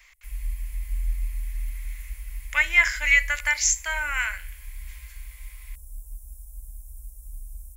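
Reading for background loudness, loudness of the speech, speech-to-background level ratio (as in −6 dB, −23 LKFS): −38.5 LKFS, −21.5 LKFS, 17.0 dB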